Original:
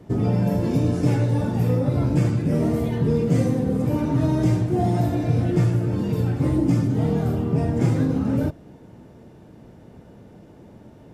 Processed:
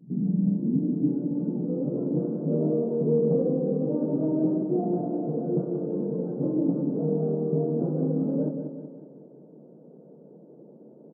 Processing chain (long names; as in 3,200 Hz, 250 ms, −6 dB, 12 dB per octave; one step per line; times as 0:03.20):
on a send: repeating echo 186 ms, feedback 50%, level −7 dB
on the sum: hard clipping −12 dBFS, distortion −24 dB
low-pass filter sweep 200 Hz → 490 Hz, 0:00.27–0:02.45
brick-wall band-pass 130–1,600 Hz
level −7 dB